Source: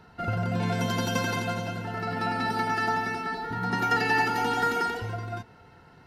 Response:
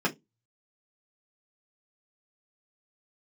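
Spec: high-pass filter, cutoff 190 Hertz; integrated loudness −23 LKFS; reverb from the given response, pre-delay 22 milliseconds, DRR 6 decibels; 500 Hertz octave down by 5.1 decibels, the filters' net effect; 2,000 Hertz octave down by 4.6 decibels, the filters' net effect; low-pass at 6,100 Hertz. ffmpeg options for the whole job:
-filter_complex "[0:a]highpass=190,lowpass=6100,equalizer=frequency=500:width_type=o:gain=-6,equalizer=frequency=2000:width_type=o:gain=-5.5,asplit=2[link_01][link_02];[1:a]atrim=start_sample=2205,adelay=22[link_03];[link_02][link_03]afir=irnorm=-1:irlink=0,volume=-17dB[link_04];[link_01][link_04]amix=inputs=2:normalize=0,volume=7dB"

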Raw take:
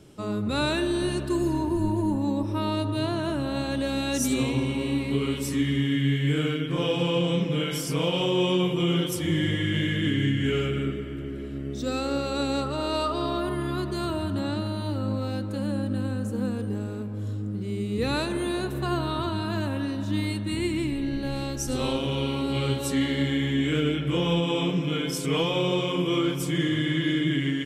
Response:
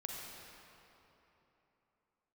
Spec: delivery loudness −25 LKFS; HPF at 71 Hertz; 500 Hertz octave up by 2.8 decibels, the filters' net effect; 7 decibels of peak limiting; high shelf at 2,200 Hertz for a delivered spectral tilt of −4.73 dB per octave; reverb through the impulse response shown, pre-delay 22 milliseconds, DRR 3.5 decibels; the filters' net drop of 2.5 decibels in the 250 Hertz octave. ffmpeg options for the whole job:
-filter_complex "[0:a]highpass=71,equalizer=frequency=250:width_type=o:gain=-5.5,equalizer=frequency=500:width_type=o:gain=5,highshelf=frequency=2200:gain=5.5,alimiter=limit=-17.5dB:level=0:latency=1,asplit=2[link_01][link_02];[1:a]atrim=start_sample=2205,adelay=22[link_03];[link_02][link_03]afir=irnorm=-1:irlink=0,volume=-3dB[link_04];[link_01][link_04]amix=inputs=2:normalize=0,volume=0.5dB"

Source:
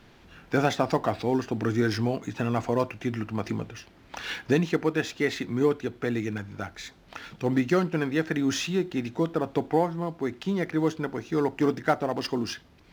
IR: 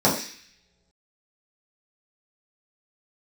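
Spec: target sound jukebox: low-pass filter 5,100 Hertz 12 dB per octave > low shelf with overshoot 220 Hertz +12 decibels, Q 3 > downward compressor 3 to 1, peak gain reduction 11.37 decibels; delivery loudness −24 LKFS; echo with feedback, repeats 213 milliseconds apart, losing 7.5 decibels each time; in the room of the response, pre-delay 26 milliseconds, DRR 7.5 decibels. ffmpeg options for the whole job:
-filter_complex "[0:a]aecho=1:1:213|426|639|852|1065:0.422|0.177|0.0744|0.0312|0.0131,asplit=2[link_01][link_02];[1:a]atrim=start_sample=2205,adelay=26[link_03];[link_02][link_03]afir=irnorm=-1:irlink=0,volume=-26dB[link_04];[link_01][link_04]amix=inputs=2:normalize=0,lowpass=5100,lowshelf=frequency=220:width_type=q:width=3:gain=12,acompressor=threshold=-19dB:ratio=3,volume=-2dB"

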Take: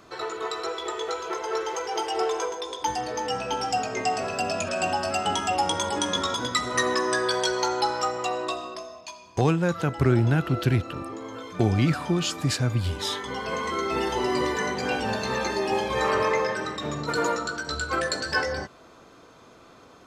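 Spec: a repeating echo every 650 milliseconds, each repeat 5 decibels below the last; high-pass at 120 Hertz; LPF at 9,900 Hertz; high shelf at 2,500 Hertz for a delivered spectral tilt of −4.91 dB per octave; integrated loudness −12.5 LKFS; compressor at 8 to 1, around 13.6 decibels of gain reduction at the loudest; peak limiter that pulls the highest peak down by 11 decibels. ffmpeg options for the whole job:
ffmpeg -i in.wav -af "highpass=120,lowpass=9900,highshelf=frequency=2500:gain=-8,acompressor=threshold=-32dB:ratio=8,alimiter=level_in=7dB:limit=-24dB:level=0:latency=1,volume=-7dB,aecho=1:1:650|1300|1950|2600|3250|3900|4550:0.562|0.315|0.176|0.0988|0.0553|0.031|0.0173,volume=25.5dB" out.wav

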